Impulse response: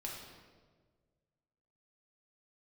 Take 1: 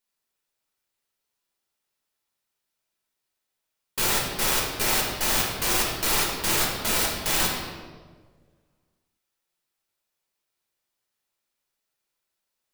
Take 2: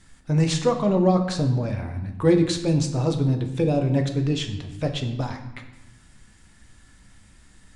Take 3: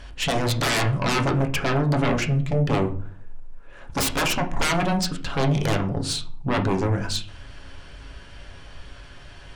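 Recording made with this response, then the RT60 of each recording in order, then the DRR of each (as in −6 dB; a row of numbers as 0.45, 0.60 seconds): 1; 1.6, 0.95, 0.50 seconds; −3.0, 4.5, 3.0 decibels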